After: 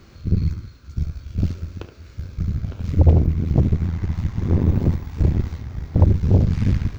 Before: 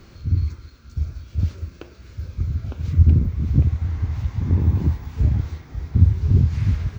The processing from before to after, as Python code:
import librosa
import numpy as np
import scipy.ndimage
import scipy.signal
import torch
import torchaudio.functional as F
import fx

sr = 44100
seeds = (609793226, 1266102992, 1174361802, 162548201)

y = fx.reverse_delay(x, sr, ms=229, wet_db=-12.5)
y = y + 10.0 ** (-9.5 / 20.0) * np.pad(y, (int(73 * sr / 1000.0), 0))[:len(y)]
y = fx.cheby_harmonics(y, sr, harmonics=(8,), levels_db=(-15,), full_scale_db=-2.0)
y = y * 10.0 ** (-1.0 / 20.0)